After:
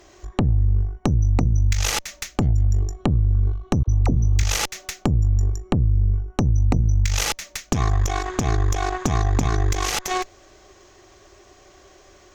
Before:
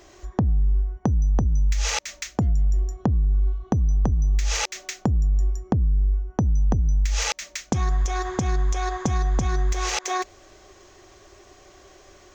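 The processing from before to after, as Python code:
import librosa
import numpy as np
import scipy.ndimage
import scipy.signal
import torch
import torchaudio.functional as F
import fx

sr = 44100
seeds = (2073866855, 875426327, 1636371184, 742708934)

y = fx.cheby_harmonics(x, sr, harmonics=(4,), levels_db=(-8,), full_scale_db=-11.0)
y = fx.dispersion(y, sr, late='lows', ms=45.0, hz=600.0, at=(3.83, 4.43))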